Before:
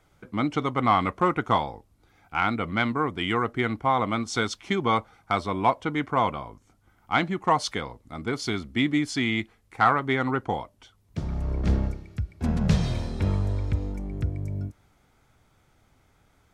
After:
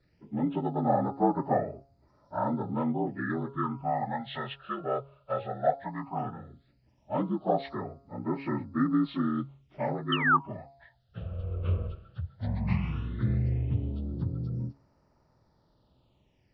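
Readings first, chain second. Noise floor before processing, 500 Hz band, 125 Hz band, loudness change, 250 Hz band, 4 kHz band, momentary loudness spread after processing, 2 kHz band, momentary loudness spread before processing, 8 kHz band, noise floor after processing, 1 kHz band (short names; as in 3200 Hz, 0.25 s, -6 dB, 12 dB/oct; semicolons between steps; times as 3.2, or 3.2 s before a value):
-64 dBFS, -3.0 dB, -3.0 dB, -4.5 dB, -3.0 dB, -9.5 dB, 12 LU, -7.0 dB, 11 LU, under -35 dB, -68 dBFS, -6.0 dB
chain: inharmonic rescaling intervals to 76%; de-hum 137.8 Hz, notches 10; painted sound fall, 10.12–10.37, 1100–3200 Hz -20 dBFS; phaser stages 8, 0.15 Hz, lowest notch 250–3200 Hz; gain -1.5 dB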